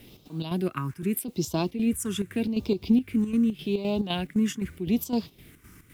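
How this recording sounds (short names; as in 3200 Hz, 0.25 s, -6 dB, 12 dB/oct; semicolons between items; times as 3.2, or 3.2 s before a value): phasing stages 4, 0.83 Hz, lowest notch 670–1800 Hz; a quantiser's noise floor 12-bit, dither triangular; chopped level 3.9 Hz, depth 60%, duty 65%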